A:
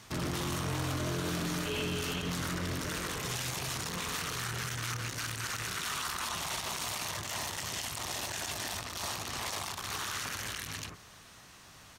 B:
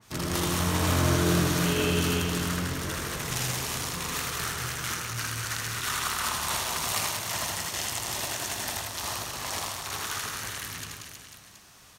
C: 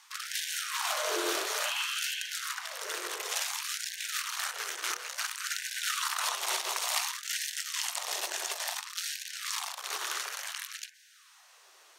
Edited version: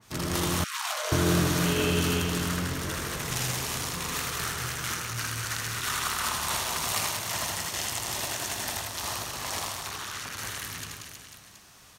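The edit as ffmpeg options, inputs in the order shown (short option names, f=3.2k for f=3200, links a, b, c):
-filter_complex "[1:a]asplit=3[a][b][c];[a]atrim=end=0.642[d];[2:a]atrim=start=0.638:end=1.122[e];[b]atrim=start=1.118:end=9.902[f];[0:a]atrim=start=9.898:end=10.382[g];[c]atrim=start=10.378[h];[d][e]acrossfade=d=0.004:c1=hsin:c2=hsin[i];[i][f]acrossfade=d=0.004:c1=hsin:c2=hsin[j];[j][g]acrossfade=d=0.004:c1=hsin:c2=hsin[k];[k][h]acrossfade=d=0.004:c1=hsin:c2=hsin"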